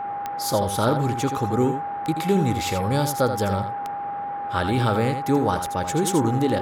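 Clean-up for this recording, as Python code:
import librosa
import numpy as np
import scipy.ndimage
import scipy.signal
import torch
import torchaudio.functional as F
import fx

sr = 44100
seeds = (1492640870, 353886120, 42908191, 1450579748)

y = fx.fix_declick_ar(x, sr, threshold=10.0)
y = fx.notch(y, sr, hz=810.0, q=30.0)
y = fx.noise_reduce(y, sr, print_start_s=3.94, print_end_s=4.44, reduce_db=30.0)
y = fx.fix_echo_inverse(y, sr, delay_ms=82, level_db=-8.5)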